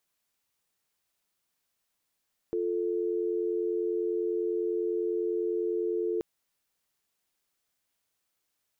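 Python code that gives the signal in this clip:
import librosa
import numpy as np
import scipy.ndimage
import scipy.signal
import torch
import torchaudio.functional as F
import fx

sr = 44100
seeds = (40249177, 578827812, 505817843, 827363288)

y = fx.call_progress(sr, length_s=3.68, kind='dial tone', level_db=-29.5)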